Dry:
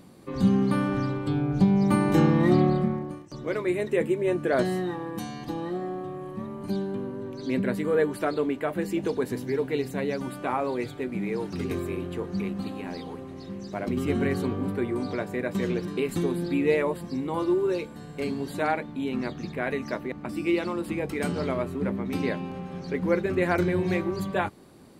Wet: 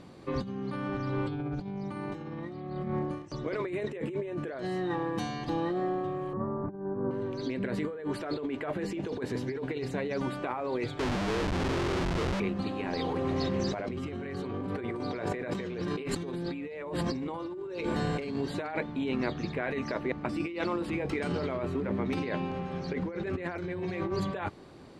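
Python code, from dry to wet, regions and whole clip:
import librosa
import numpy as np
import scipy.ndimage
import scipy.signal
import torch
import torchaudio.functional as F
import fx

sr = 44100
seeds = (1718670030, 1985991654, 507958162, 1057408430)

y = fx.chain(x, sr, fx.steep_lowpass(hz=1500.0, slope=36),
    fx.over_compress(threshold_db=-33.0, ratio=-0.5), at=(6.33, 7.11))
y = fx.chain(y, sr, fx.lowpass(hz=1500.0, slope=12),
    fx.schmitt(flips_db=-36.0), at=(10.99, 12.4))
y = fx.chain(y, sr, fx.hum_notches(base_hz=50, count=8),
    fx.env_flatten(amount_pct=50), at=(12.93, 18.36))
y = scipy.signal.sosfilt(scipy.signal.butter(2, 5300.0, 'lowpass', fs=sr, output='sos'), y)
y = fx.peak_eq(y, sr, hz=210.0, db=-5.0, octaves=0.76)
y = fx.over_compress(y, sr, threshold_db=-32.0, ratio=-1.0)
y = F.gain(torch.from_numpy(y), -1.0).numpy()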